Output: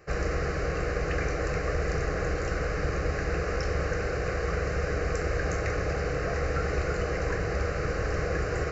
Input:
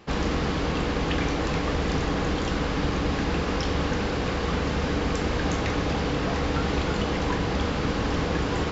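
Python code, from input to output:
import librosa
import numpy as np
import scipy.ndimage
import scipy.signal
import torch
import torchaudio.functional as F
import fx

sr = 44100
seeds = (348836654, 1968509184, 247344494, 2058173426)

y = fx.fixed_phaser(x, sr, hz=920.0, stages=6)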